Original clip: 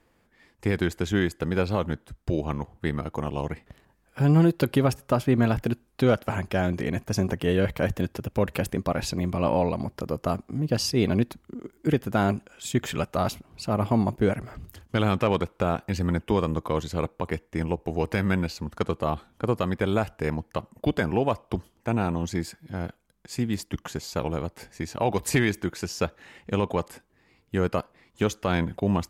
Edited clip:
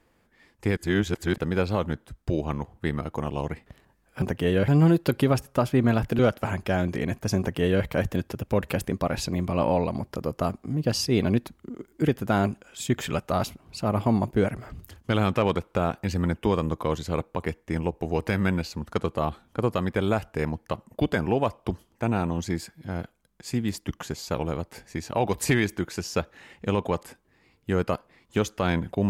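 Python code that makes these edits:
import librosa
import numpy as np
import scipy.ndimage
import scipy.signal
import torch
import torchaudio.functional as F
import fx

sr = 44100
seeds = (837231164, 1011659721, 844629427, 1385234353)

y = fx.edit(x, sr, fx.reverse_span(start_s=0.77, length_s=0.61),
    fx.cut(start_s=5.73, length_s=0.31),
    fx.duplicate(start_s=7.24, length_s=0.46, to_s=4.22), tone=tone)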